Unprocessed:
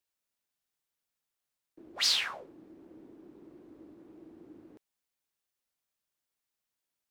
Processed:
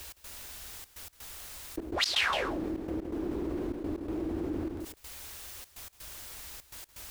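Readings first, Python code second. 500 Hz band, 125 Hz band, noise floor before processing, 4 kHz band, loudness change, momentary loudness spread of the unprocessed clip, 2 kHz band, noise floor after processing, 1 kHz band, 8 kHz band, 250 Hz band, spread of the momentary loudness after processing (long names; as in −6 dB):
+16.5 dB, +22.5 dB, below −85 dBFS, −1.0 dB, −7.0 dB, 15 LU, +6.0 dB, −60 dBFS, +10.5 dB, 0.0 dB, +18.0 dB, 16 LU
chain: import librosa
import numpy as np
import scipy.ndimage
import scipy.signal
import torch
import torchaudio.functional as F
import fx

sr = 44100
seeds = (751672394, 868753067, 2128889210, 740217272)

y = fx.low_shelf_res(x, sr, hz=100.0, db=12.0, q=1.5)
y = fx.step_gate(y, sr, bpm=125, pattern='x.xxxxx.', floor_db=-24.0, edge_ms=4.5)
y = y + 10.0 ** (-15.5 / 20.0) * np.pad(y, (int(166 * sr / 1000.0), 0))[:len(y)]
y = fx.env_flatten(y, sr, amount_pct=70)
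y = F.gain(torch.from_numpy(y), 2.0).numpy()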